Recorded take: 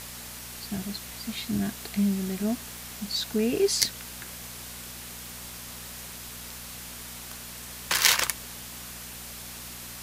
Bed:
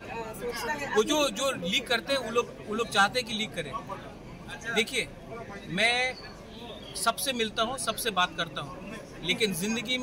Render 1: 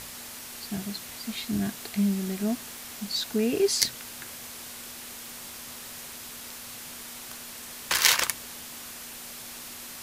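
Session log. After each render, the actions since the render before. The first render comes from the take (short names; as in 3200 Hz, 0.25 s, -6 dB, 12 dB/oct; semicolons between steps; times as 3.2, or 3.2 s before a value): de-hum 60 Hz, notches 3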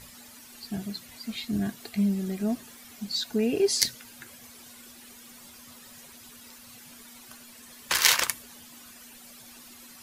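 denoiser 12 dB, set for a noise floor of -42 dBFS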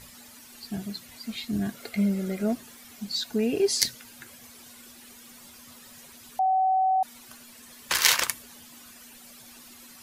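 1.74–2.53 small resonant body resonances 540/1400/2100 Hz, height 12 dB, ringing for 25 ms; 6.39–7.03 bleep 757 Hz -19.5 dBFS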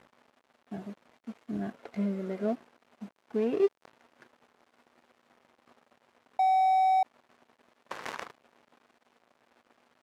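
switching dead time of 0.16 ms; band-pass 620 Hz, Q 0.69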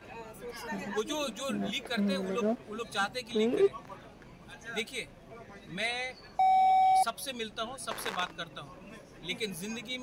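add bed -8.5 dB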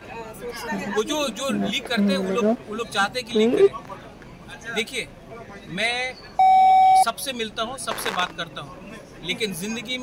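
gain +9.5 dB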